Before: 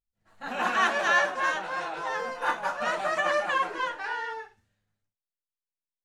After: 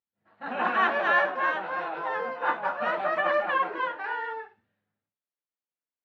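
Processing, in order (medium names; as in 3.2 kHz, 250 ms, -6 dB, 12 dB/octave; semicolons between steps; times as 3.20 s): high-pass 180 Hz 12 dB/octave; distance through air 400 m; trim +3 dB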